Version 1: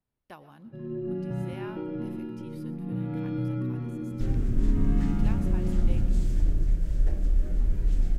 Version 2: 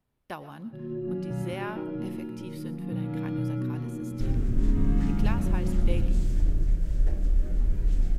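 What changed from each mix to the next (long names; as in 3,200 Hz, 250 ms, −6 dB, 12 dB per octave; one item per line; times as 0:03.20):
speech +8.5 dB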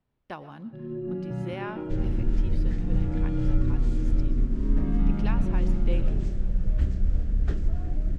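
second sound: entry −2.30 s
master: add high-frequency loss of the air 92 metres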